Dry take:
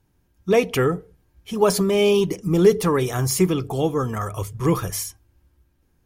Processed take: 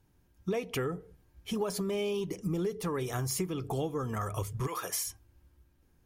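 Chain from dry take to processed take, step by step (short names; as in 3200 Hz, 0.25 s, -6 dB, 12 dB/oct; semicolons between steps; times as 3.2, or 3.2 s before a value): 4.66–5.06 HPF 920 Hz -> 220 Hz 12 dB/oct; compressor 10:1, threshold -27 dBFS, peak gain reduction 18 dB; gain -2.5 dB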